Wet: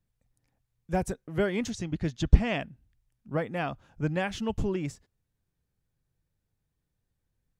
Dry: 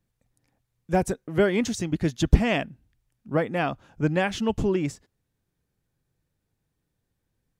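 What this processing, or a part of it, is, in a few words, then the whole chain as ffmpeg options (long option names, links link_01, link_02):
low shelf boost with a cut just above: -filter_complex "[0:a]lowshelf=frequency=92:gain=7.5,equalizer=frequency=310:width_type=o:width=1:gain=-2.5,asettb=1/sr,asplit=3[link_01][link_02][link_03];[link_01]atrim=end=1.704[link_04];[link_02]atrim=start=1.7:end=2.61,asetpts=PTS-STARTPTS,afade=type=in:duration=0.004:curve=qsin,afade=type=out:start_time=0.906:duration=0.004:curve=qsin,lowpass=6800[link_05];[link_03]atrim=start=2.606[link_06];[link_04][link_05]acrossfade=duration=0.004:curve1=hsin:curve2=qsin[link_07];[link_07][link_06]acrossfade=duration=0.004:curve1=qsin:curve2=hsin,volume=-5.5dB"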